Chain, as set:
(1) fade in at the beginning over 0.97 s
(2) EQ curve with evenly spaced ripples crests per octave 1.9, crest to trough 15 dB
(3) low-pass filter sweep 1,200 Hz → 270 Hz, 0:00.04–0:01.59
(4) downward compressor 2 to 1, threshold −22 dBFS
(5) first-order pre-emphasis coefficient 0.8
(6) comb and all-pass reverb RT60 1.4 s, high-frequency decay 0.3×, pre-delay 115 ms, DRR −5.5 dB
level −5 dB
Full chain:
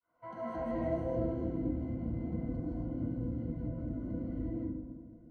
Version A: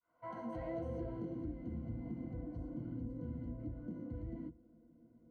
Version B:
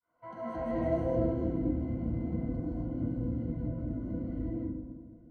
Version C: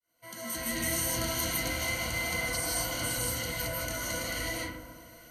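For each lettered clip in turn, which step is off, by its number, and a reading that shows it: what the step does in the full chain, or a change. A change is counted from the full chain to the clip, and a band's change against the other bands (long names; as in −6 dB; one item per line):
6, change in momentary loudness spread −2 LU
4, change in momentary loudness spread +3 LU
3, 1 kHz band +9.0 dB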